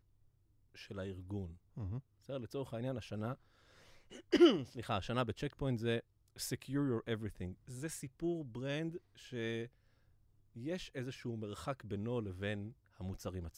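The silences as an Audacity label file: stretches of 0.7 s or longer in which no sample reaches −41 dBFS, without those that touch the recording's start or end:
3.340000	4.150000	silence
9.650000	10.640000	silence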